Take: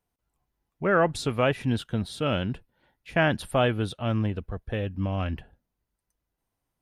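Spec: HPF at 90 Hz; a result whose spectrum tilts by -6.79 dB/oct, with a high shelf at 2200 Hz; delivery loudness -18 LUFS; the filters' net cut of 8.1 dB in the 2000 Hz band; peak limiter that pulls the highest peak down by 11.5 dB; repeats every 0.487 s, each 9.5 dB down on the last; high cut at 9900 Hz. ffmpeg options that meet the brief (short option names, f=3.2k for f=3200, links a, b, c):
-af "highpass=90,lowpass=9.9k,equalizer=f=2k:t=o:g=-7.5,highshelf=f=2.2k:g=-7.5,alimiter=limit=-23.5dB:level=0:latency=1,aecho=1:1:487|974|1461|1948:0.335|0.111|0.0365|0.012,volume=17dB"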